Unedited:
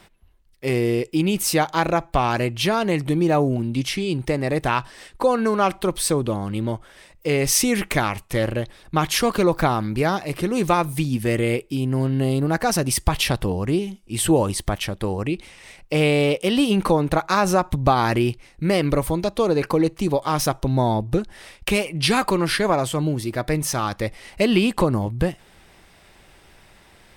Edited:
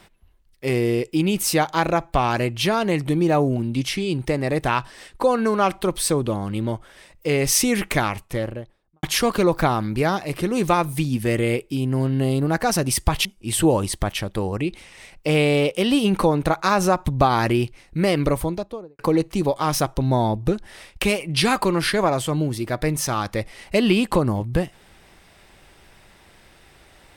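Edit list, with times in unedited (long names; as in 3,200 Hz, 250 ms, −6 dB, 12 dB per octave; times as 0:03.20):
0:08.01–0:09.03: fade out and dull
0:13.25–0:13.91: remove
0:18.95–0:19.65: fade out and dull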